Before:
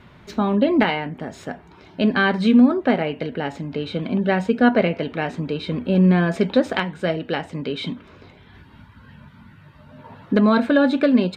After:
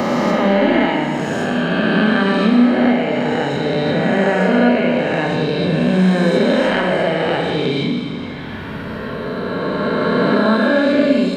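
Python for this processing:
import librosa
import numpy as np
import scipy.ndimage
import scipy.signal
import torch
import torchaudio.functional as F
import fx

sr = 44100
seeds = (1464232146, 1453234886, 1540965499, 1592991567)

y = fx.spec_swells(x, sr, rise_s=2.75)
y = fx.rev_schroeder(y, sr, rt60_s=1.3, comb_ms=29, drr_db=1.5)
y = fx.band_squash(y, sr, depth_pct=70)
y = y * 10.0 ** (-3.5 / 20.0)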